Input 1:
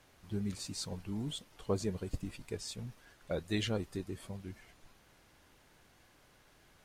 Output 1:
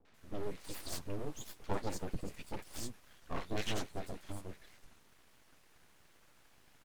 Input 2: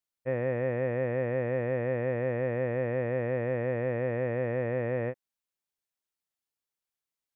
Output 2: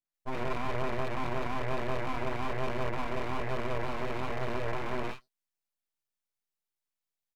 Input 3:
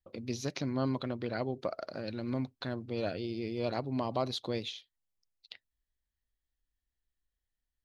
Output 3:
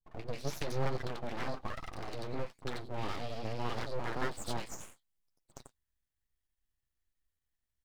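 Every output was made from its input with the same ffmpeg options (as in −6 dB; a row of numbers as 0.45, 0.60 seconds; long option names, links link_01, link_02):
-filter_complex "[0:a]flanger=delay=5.8:depth=9.3:regen=-23:speed=1.1:shape=triangular,acrossover=split=600|4200[link_01][link_02][link_03];[link_02]adelay=50[link_04];[link_03]adelay=140[link_05];[link_01][link_04][link_05]amix=inputs=3:normalize=0,aeval=exprs='abs(val(0))':channel_layout=same,volume=5dB"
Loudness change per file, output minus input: −4.0, −4.5, −4.0 LU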